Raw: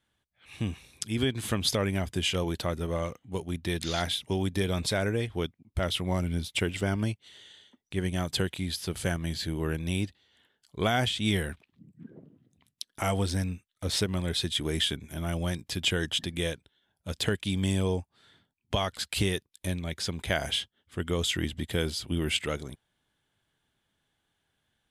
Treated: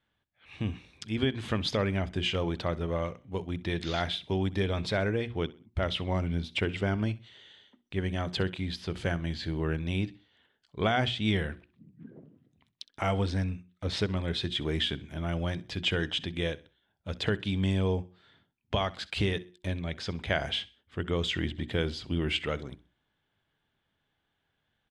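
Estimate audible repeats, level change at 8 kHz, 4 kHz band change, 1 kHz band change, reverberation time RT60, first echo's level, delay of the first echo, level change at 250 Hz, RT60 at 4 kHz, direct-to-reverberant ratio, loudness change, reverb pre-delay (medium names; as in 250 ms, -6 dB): 2, -13.5 dB, -2.5 dB, 0.0 dB, no reverb, -20.0 dB, 64 ms, -1.0 dB, no reverb, no reverb, -1.0 dB, no reverb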